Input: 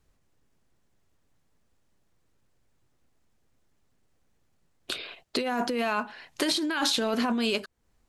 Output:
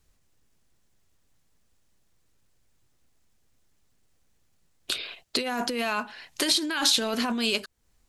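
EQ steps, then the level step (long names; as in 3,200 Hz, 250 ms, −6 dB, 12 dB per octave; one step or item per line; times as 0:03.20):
low-shelf EQ 110 Hz +5 dB
high-shelf EQ 2,300 Hz +9.5 dB
−2.5 dB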